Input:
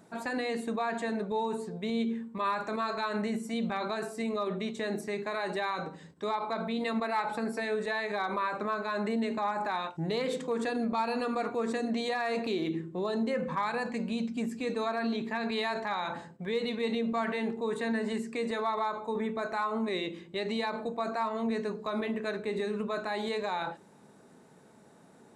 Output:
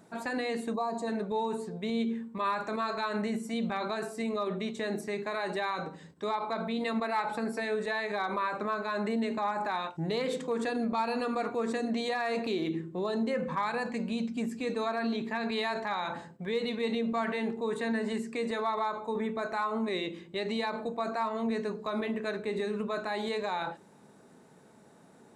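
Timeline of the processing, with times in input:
0.74–1.07 spectral gain 1200–3800 Hz -17 dB

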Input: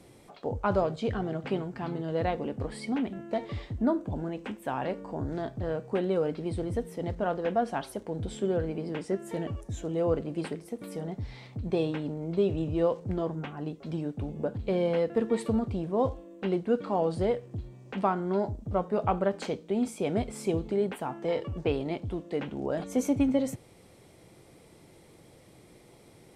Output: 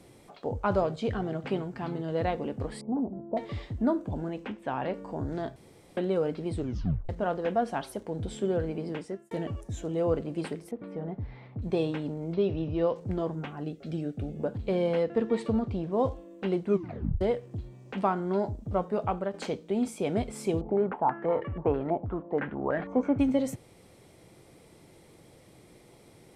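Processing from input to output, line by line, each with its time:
2.81–3.37 steep low-pass 960 Hz
4.44–4.94 LPF 4500 Hz
5.56–5.97 room tone
6.55 tape stop 0.54 s
8.91–9.31 fade out
10.71–11.62 LPF 1800 Hz
12.34–12.96 elliptic low-pass 5700 Hz
13.63–14.4 Butterworth band-stop 980 Hz, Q 2.4
15.03–15.92 LPF 5800 Hz
16.65 tape stop 0.56 s
18.84–19.34 fade out, to -6.5 dB
20.61–23.19 stepped low-pass 6.2 Hz 780–1900 Hz

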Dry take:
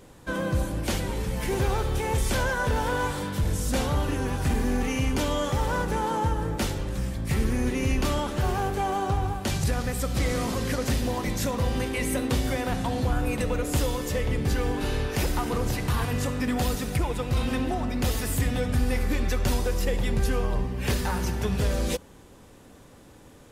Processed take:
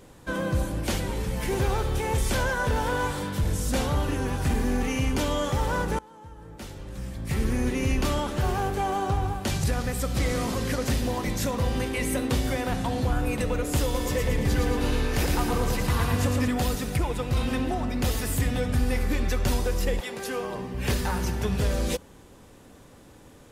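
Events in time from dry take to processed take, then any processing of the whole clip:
5.99–7.51 fade in quadratic, from -23 dB
13.83–16.48 feedback echo 0.113 s, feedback 54%, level -4 dB
19.99–20.73 HPF 530 Hz -> 150 Hz

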